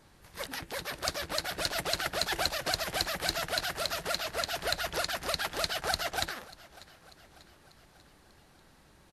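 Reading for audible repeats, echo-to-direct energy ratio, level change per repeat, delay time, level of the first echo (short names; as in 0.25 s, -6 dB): 3, -20.0 dB, -5.0 dB, 0.592 s, -21.5 dB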